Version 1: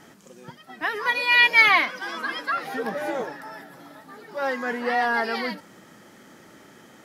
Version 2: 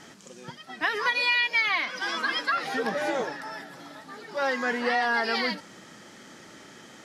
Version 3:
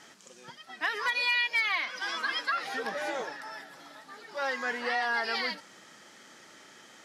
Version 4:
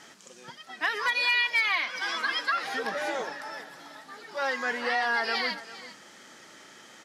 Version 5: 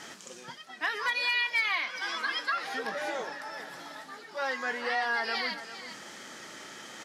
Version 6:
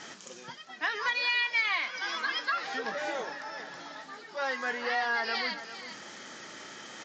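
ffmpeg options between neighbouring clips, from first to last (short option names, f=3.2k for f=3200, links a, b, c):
-af "lowpass=6.1k,highshelf=f=3.3k:g=11.5,acompressor=threshold=-21dB:ratio=12"
-af "lowshelf=f=360:g=-11.5,volume=16.5dB,asoftclip=hard,volume=-16.5dB,volume=-3dB"
-af "aecho=1:1:399:0.158,volume=2.5dB"
-filter_complex "[0:a]areverse,acompressor=mode=upward:threshold=-33dB:ratio=2.5,areverse,asplit=2[a][b];[b]adelay=23,volume=-14dB[c];[a][c]amix=inputs=2:normalize=0,volume=-3dB"
-ar 16000 -c:a sbc -b:a 64k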